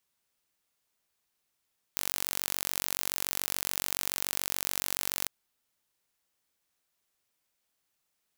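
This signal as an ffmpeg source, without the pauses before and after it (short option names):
-f lavfi -i "aevalsrc='0.631*eq(mod(n,938),0)':d=3.3:s=44100"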